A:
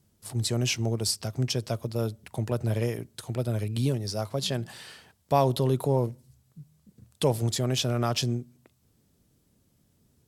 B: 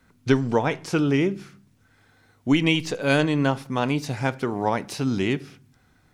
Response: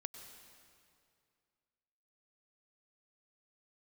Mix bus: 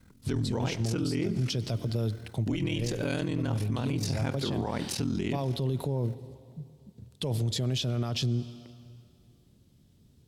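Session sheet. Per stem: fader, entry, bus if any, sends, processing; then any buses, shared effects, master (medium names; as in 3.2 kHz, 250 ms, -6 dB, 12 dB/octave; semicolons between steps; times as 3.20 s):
-10.0 dB, 0.00 s, send -10 dB, peaking EQ 3.6 kHz +10 dB 1.3 oct
-5.0 dB, 0.00 s, send -12.5 dB, treble shelf 2.8 kHz +11 dB; ring modulator 21 Hz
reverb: on, RT60 2.4 s, pre-delay 91 ms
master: bass shelf 450 Hz +12 dB; gain riding within 5 dB 0.5 s; peak limiter -21.5 dBFS, peak gain reduction 15.5 dB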